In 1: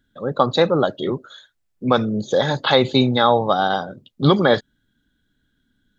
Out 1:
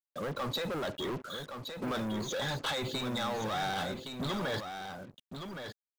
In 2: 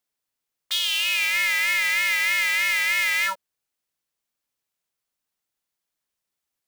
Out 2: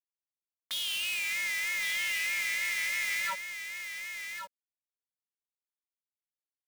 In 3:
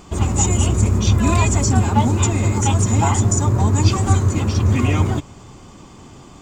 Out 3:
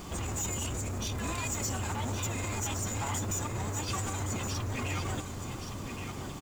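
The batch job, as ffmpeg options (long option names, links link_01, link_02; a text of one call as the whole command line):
ffmpeg -i in.wav -filter_complex "[0:a]asplit=2[link_01][link_02];[link_02]acompressor=threshold=-26dB:ratio=6,volume=-1.5dB[link_03];[link_01][link_03]amix=inputs=2:normalize=0,alimiter=limit=-11dB:level=0:latency=1:release=28,acrossover=split=1100[link_04][link_05];[link_04]asoftclip=type=hard:threshold=-27.5dB[link_06];[link_06][link_05]amix=inputs=2:normalize=0,acrusher=bits=6:mix=0:aa=0.5,asoftclip=type=tanh:threshold=-23.5dB,aecho=1:1:1118:0.422,volume=-5.5dB" out.wav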